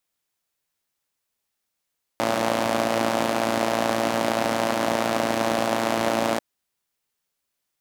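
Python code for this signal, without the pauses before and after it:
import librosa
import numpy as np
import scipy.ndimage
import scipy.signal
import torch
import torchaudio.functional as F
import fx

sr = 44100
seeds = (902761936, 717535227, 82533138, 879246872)

y = fx.engine_four(sr, seeds[0], length_s=4.19, rpm=3400, resonances_hz=(280.0, 590.0))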